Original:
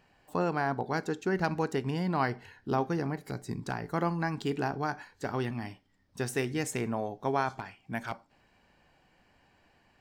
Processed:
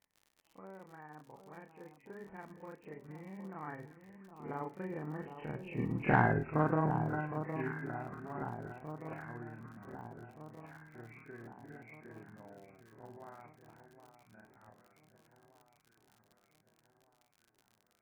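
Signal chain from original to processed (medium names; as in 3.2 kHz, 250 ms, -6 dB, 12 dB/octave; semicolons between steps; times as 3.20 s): knee-point frequency compression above 1.6 kHz 4:1; Doppler pass-by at 3.45 s, 28 m/s, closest 2.3 m; on a send: echo whose repeats swap between lows and highs 425 ms, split 1.2 kHz, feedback 69%, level -9 dB; on the sum: granular stretch 1.8×, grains 117 ms; Bessel low-pass 2.1 kHz; in parallel at -11.5 dB: saturation -33 dBFS, distortion -13 dB; on the sum: crackle 67 per s -59 dBFS; trim +8.5 dB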